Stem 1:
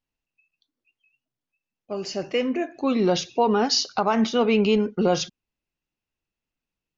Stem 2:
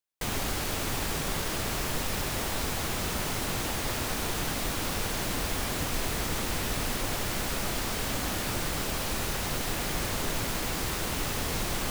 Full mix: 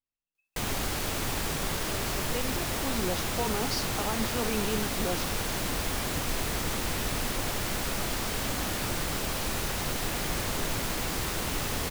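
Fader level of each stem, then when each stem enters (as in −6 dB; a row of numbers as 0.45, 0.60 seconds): −12.5, 0.0 decibels; 0.00, 0.35 seconds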